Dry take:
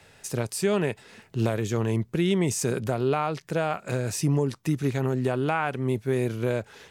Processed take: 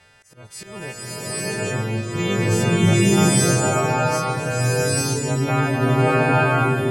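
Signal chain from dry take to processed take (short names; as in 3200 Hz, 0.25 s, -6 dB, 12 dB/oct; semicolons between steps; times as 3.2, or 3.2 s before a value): frequency quantiser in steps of 2 st; LPF 1600 Hz 6 dB/oct; bell 340 Hz -6 dB 2 oct; auto swell 0.392 s; chopper 0.63 Hz, depth 60%, duty 85%; bloom reverb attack 0.9 s, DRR -10.5 dB; gain +3 dB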